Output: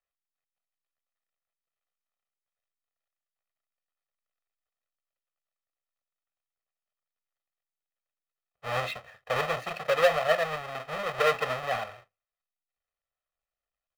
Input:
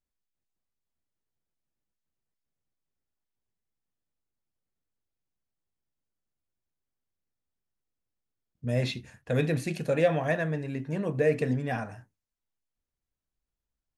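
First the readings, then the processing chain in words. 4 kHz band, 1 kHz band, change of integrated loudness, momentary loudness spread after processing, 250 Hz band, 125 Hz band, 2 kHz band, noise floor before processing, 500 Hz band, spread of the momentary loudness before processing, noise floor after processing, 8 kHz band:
+6.5 dB, +8.5 dB, +0.5 dB, 12 LU, −16.5 dB, −13.0 dB, +4.5 dB, below −85 dBFS, 0.0 dB, 9 LU, below −85 dBFS, +2.0 dB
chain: each half-wave held at its own peak
three-way crossover with the lows and the highs turned down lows −21 dB, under 530 Hz, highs −17 dB, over 3,400 Hz
comb filter 1.6 ms, depth 68%

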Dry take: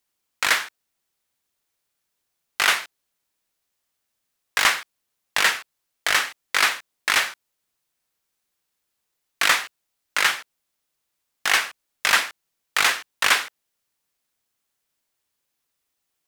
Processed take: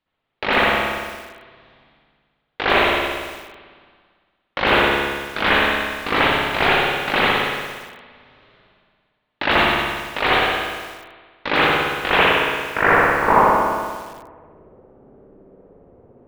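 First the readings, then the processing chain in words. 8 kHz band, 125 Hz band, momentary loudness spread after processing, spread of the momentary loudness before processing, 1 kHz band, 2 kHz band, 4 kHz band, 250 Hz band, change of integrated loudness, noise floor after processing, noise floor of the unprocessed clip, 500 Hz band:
−13.5 dB, can't be measured, 17 LU, 11 LU, +10.0 dB, +4.0 dB, +1.5 dB, +21.5 dB, +3.5 dB, −72 dBFS, −78 dBFS, +18.0 dB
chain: sub-harmonics by changed cycles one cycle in 2, inverted
in parallel at +2.5 dB: brickwall limiter −11 dBFS, peak gain reduction 6.5 dB
on the sum: hum removal 110.7 Hz, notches 6
low-pass filter sweep 3,900 Hz → 470 Hz, 0:11.94–0:14.19
reversed playback
upward compression, threshold −28 dBFS
reversed playback
head-to-tape spacing loss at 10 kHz 42 dB
spring reverb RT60 1.6 s, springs 57 ms, chirp 35 ms, DRR −8.5 dB
feedback echo at a low word length 100 ms, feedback 55%, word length 5 bits, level −8 dB
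level −3.5 dB

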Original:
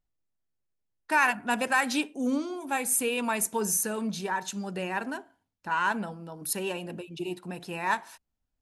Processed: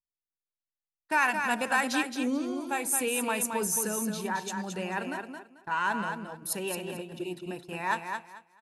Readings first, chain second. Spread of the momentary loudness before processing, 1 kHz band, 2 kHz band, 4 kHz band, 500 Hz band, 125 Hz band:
12 LU, −1.0 dB, −1.0 dB, −1.0 dB, −1.0 dB, −1.5 dB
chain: noise gate −41 dBFS, range −20 dB
on a send: repeating echo 220 ms, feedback 21%, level −6 dB
on the sum: level −2 dB

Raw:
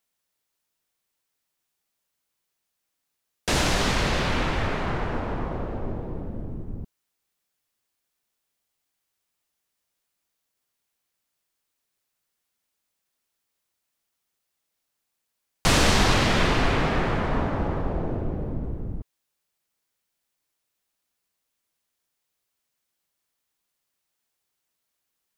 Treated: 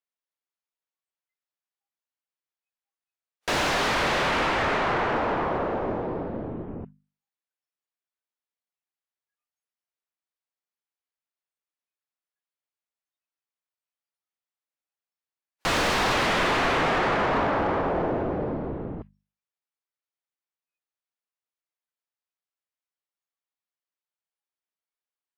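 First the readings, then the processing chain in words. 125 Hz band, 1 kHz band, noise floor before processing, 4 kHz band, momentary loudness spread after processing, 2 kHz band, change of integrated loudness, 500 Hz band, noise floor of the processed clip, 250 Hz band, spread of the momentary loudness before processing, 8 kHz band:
−7.0 dB, +3.5 dB, −80 dBFS, −2.0 dB, 13 LU, +2.0 dB, +0.5 dB, +2.5 dB, below −85 dBFS, −2.0 dB, 15 LU, −5.5 dB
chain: noise reduction from a noise print of the clip's start 24 dB
mid-hump overdrive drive 28 dB, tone 1,800 Hz, clips at −6 dBFS
mains-hum notches 50/100/150/200/250 Hz
level −8 dB

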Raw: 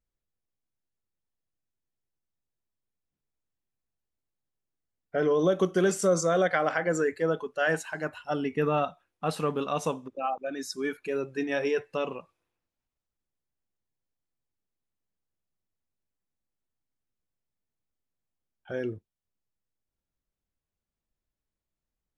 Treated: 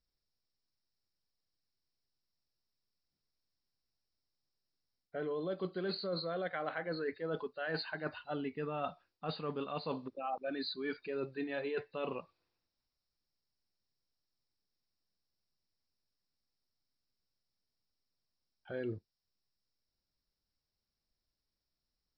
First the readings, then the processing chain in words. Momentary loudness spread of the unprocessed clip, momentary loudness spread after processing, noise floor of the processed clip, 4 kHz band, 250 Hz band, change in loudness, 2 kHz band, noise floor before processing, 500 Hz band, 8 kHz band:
10 LU, 5 LU, below −85 dBFS, −2.5 dB, −10.0 dB, −11.0 dB, −11.0 dB, below −85 dBFS, −11.5 dB, below −35 dB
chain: hearing-aid frequency compression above 3,600 Hz 4 to 1
reversed playback
downward compressor 16 to 1, threshold −32 dBFS, peak gain reduction 14 dB
reversed playback
level −2 dB

